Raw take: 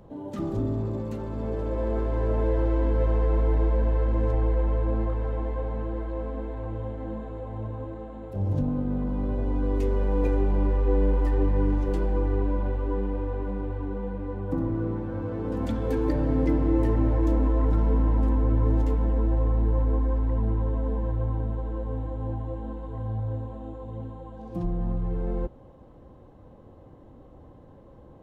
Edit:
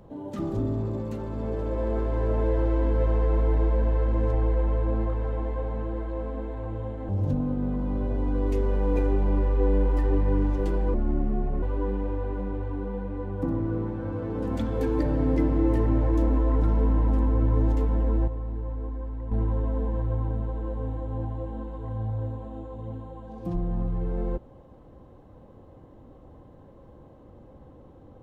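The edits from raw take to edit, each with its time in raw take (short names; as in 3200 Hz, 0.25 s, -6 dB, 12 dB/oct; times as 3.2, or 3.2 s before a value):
7.09–8.37 cut
12.22–12.72 speed 73%
19.37–20.41 gain -9 dB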